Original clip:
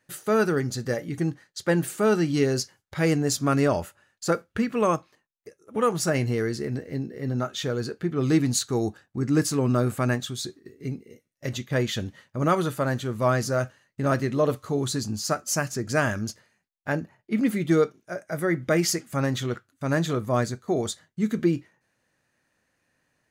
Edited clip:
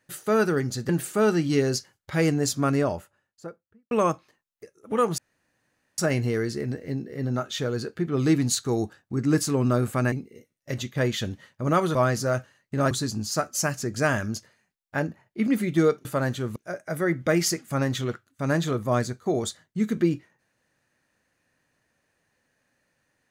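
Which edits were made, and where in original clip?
0:00.89–0:01.73: remove
0:03.23–0:04.75: fade out and dull
0:06.02: splice in room tone 0.80 s
0:10.16–0:10.87: remove
0:12.70–0:13.21: move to 0:17.98
0:14.17–0:14.84: remove

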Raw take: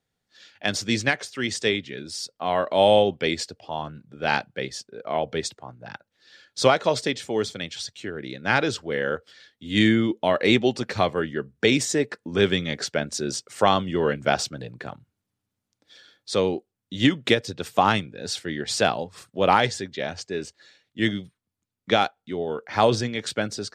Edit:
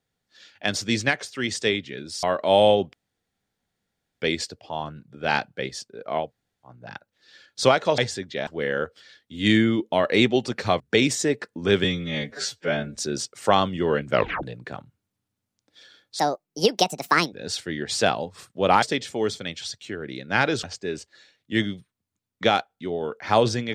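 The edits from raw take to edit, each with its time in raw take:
0:02.23–0:02.51: remove
0:03.21: splice in room tone 1.29 s
0:05.24–0:05.69: fill with room tone, crossfade 0.16 s
0:06.97–0:08.78: swap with 0:19.61–0:20.10
0:11.11–0:11.50: remove
0:12.54–0:13.10: time-stretch 2×
0:14.27: tape stop 0.30 s
0:16.33–0:18.11: play speed 157%

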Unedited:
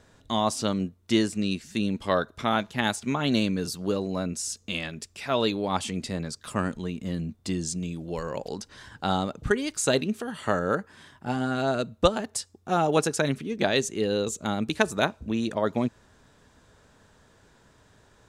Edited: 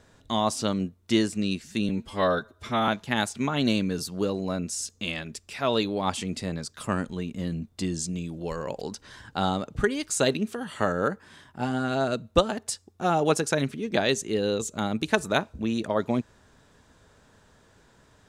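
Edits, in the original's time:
0:01.89–0:02.55: time-stretch 1.5×

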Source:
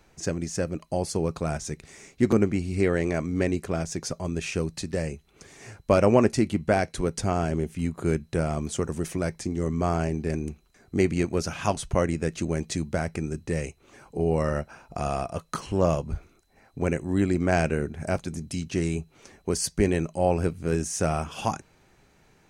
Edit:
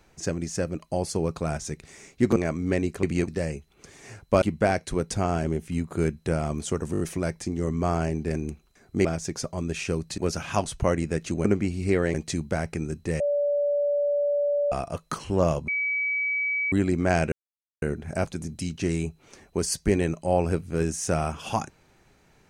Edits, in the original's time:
0:02.36–0:03.05: move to 0:12.56
0:03.72–0:04.85: swap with 0:11.04–0:11.29
0:05.99–0:06.49: remove
0:08.99: stutter 0.02 s, 5 plays
0:13.62–0:15.14: beep over 578 Hz −21 dBFS
0:16.10–0:17.14: beep over 2,280 Hz −23.5 dBFS
0:17.74: splice in silence 0.50 s

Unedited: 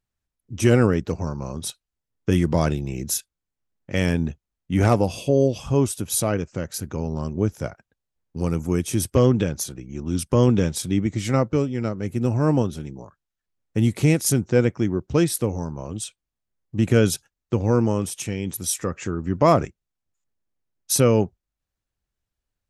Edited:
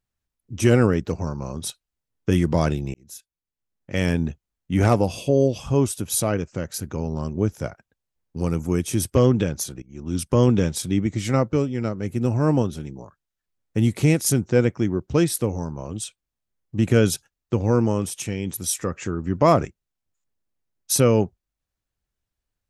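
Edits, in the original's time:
0:02.94–0:04.11: fade in
0:09.82–0:10.31: fade in equal-power, from −19.5 dB

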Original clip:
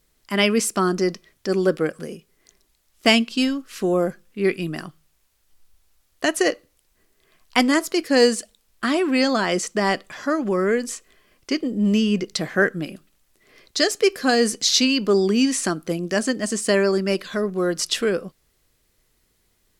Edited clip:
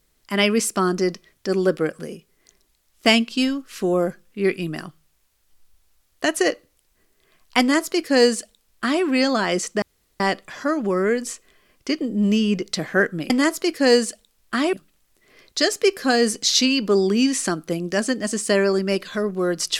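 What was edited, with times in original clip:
0:07.60–0:09.03: duplicate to 0:12.92
0:09.82: splice in room tone 0.38 s

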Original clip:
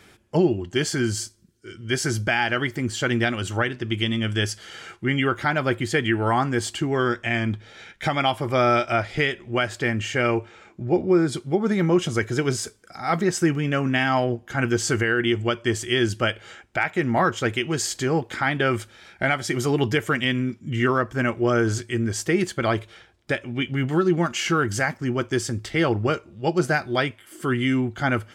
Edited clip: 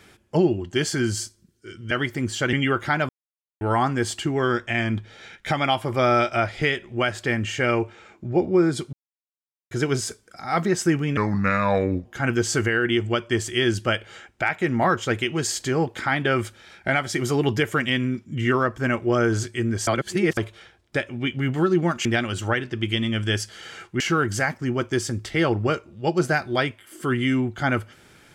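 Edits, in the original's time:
0:01.91–0:02.52: remove
0:03.14–0:05.09: move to 0:24.40
0:05.65–0:06.17: silence
0:11.49–0:12.27: silence
0:13.73–0:14.40: play speed 76%
0:22.22–0:22.72: reverse

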